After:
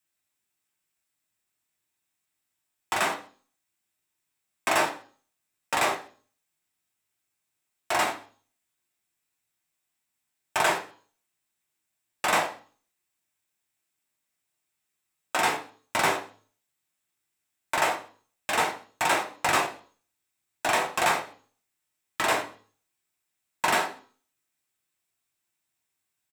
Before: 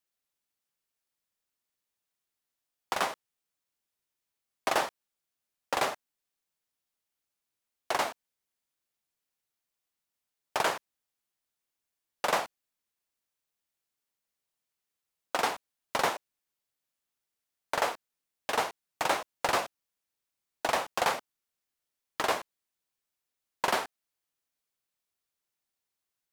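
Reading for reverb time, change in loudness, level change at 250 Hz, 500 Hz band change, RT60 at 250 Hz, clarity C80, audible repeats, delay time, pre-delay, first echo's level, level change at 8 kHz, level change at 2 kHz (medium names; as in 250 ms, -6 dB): 0.40 s, +4.5 dB, +6.0 dB, +2.5 dB, 0.50 s, 16.5 dB, 1, 132 ms, 3 ms, -22.0 dB, +6.5 dB, +7.0 dB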